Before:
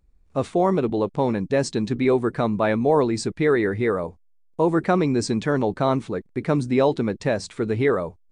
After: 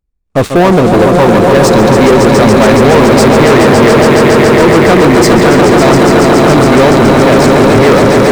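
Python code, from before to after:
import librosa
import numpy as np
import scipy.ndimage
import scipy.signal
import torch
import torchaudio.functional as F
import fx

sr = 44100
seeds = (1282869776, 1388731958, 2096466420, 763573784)

y = fx.echo_swell(x, sr, ms=140, loudest=5, wet_db=-6)
y = fx.leveller(y, sr, passes=5)
y = y * 10.0 ** (1.0 / 20.0)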